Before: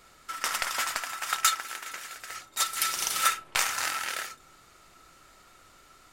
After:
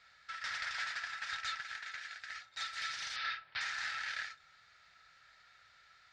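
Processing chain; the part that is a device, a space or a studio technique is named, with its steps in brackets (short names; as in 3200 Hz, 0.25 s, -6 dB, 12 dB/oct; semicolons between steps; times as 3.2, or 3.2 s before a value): scooped metal amplifier (tube stage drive 31 dB, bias 0.55; speaker cabinet 89–4500 Hz, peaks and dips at 250 Hz +4 dB, 1100 Hz -8 dB, 1700 Hz +8 dB, 2900 Hz -6 dB; passive tone stack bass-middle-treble 10-0-10); 3.16–3.61 steep low-pass 5200 Hz 48 dB/oct; gain +2.5 dB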